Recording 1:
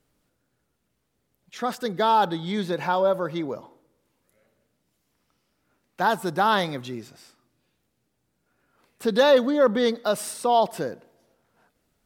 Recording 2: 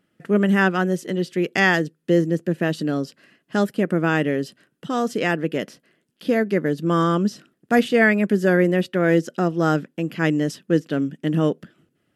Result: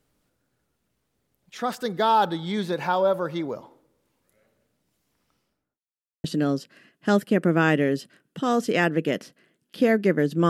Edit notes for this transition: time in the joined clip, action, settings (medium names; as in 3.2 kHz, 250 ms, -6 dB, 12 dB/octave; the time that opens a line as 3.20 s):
recording 1
5.35–5.83 s: studio fade out
5.83–6.24 s: mute
6.24 s: go over to recording 2 from 2.71 s